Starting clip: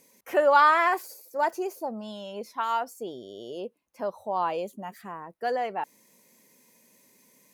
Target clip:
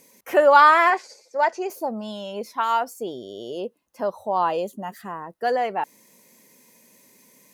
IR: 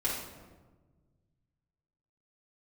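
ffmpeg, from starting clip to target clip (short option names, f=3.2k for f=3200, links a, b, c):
-filter_complex "[0:a]asettb=1/sr,asplit=3[a][b][c];[a]atrim=end=0.904[d];[b]atrim=start=0.9:end=1.7,asetpts=PTS-STARTPTS,afade=t=in:d=0.004:c=qsin,afade=t=out:st=0.796:d=0.004:c=qsin,highpass=160,equalizer=f=310:t=q:w=4:g=-10,equalizer=f=1.2k:t=q:w=4:g=-3,equalizer=f=2.1k:t=q:w=4:g=5,lowpass=f=6.5k:w=0.5412,lowpass=f=6.5k:w=1.3066[e];[c]atrim=start=1.696[f];[d][e]acrossfade=d=0.004:c1=hsin:c2=qsin[g];[g][f]acrossfade=d=0.004:c1=qsin:c2=hsin,asettb=1/sr,asplit=3[h][i][j];[h]atrim=end=3.654[k];[i]atrim=start=3.65:end=5.47,asetpts=PTS-STARTPTS,afade=t=in:d=0.004:c=qsin,afade=t=out:st=1.816:d=0.004:c=qsin,bandreject=f=2.3k:w=6.9[l];[j]atrim=start=5.466[m];[k][l]acrossfade=d=0.004:c1=hsin:c2=qsin[n];[n][m]acrossfade=d=0.004:c1=qsin:c2=hsin,volume=5.5dB"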